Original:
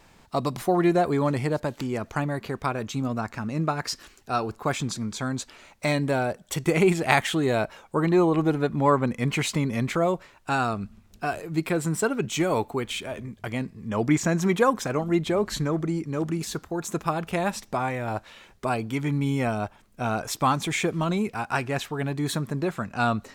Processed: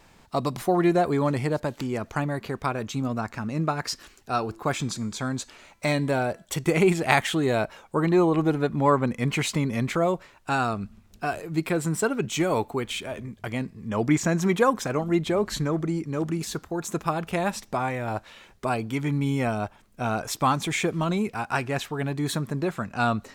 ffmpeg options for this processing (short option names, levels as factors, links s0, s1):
-filter_complex "[0:a]asettb=1/sr,asplit=3[s0][s1][s2];[s0]atrim=end=4.444[s3];[s1]atrim=start=4.44:end=6.45,asetpts=PTS-STARTPTS,afade=t=in:d=0.004:c=qsin,afade=t=out:st=2.006:d=0.004:c=qsin,bandreject=f=334.5:t=h:w=4,bandreject=f=669:t=h:w=4,bandreject=f=1003.5:t=h:w=4,bandreject=f=1338:t=h:w=4,bandreject=f=1672.5:t=h:w=4,bandreject=f=2007:t=h:w=4,bandreject=f=2341.5:t=h:w=4,bandreject=f=2676:t=h:w=4,bandreject=f=3010.5:t=h:w=4,bandreject=f=3345:t=h:w=4,bandreject=f=3679.5:t=h:w=4,bandreject=f=4014:t=h:w=4,bandreject=f=4348.5:t=h:w=4,bandreject=f=4683:t=h:w=4,bandreject=f=5017.5:t=h:w=4,bandreject=f=5352:t=h:w=4,bandreject=f=5686.5:t=h:w=4,bandreject=f=6021:t=h:w=4,bandreject=f=6355.5:t=h:w=4,bandreject=f=6690:t=h:w=4,bandreject=f=7024.5:t=h:w=4,bandreject=f=7359:t=h:w=4,bandreject=f=7693.5:t=h:w=4,bandreject=f=8028:t=h:w=4,bandreject=f=8362.5:t=h:w=4,bandreject=f=8697:t=h:w=4,bandreject=f=9031.5:t=h:w=4,bandreject=f=9366:t=h:w=4,bandreject=f=9700.5:t=h:w=4,bandreject=f=10035:t=h:w=4,bandreject=f=10369.5:t=h:w=4,bandreject=f=10704:t=h:w=4,bandreject=f=11038.5:t=h:w=4,bandreject=f=11373:t=h:w=4,bandreject=f=11707.5:t=h:w=4[s4];[s2]atrim=start=6.446[s5];[s3][s4]acrossfade=d=0.004:c1=hsin:c2=qsin[s6];[s6][s5]acrossfade=d=0.004:c1=qsin:c2=hsin"